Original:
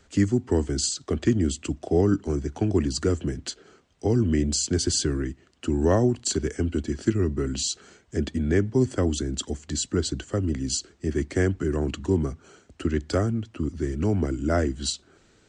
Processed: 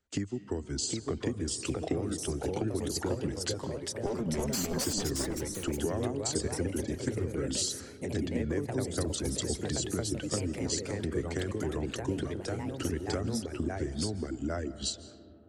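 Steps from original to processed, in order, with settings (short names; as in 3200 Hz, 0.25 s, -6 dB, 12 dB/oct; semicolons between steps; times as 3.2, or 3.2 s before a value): 4.06–4.86 minimum comb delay 5 ms; gate -51 dBFS, range -24 dB; reverb removal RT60 0.91 s; compressor 10:1, threshold -30 dBFS, peak gain reduction 15.5 dB; echoes that change speed 0.78 s, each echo +2 st, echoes 3; digital reverb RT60 3.2 s, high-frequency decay 0.25×, pre-delay 0.115 s, DRR 15 dB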